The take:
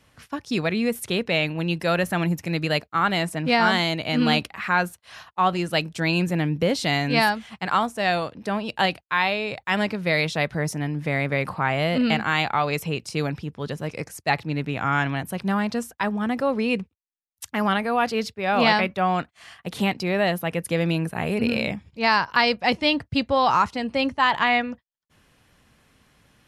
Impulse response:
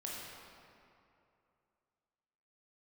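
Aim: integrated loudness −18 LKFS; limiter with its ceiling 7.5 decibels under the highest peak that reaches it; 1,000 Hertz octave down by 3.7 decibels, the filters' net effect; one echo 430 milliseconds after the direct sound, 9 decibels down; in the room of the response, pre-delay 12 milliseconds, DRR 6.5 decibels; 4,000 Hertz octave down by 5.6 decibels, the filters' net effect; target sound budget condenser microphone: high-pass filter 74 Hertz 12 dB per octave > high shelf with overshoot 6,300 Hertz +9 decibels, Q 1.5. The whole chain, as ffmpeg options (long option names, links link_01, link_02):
-filter_complex "[0:a]equalizer=frequency=1000:width_type=o:gain=-4.5,equalizer=frequency=4000:width_type=o:gain=-5,alimiter=limit=-15dB:level=0:latency=1,aecho=1:1:430:0.355,asplit=2[link_01][link_02];[1:a]atrim=start_sample=2205,adelay=12[link_03];[link_02][link_03]afir=irnorm=-1:irlink=0,volume=-7dB[link_04];[link_01][link_04]amix=inputs=2:normalize=0,highpass=74,highshelf=frequency=6300:width_type=q:width=1.5:gain=9,volume=7dB"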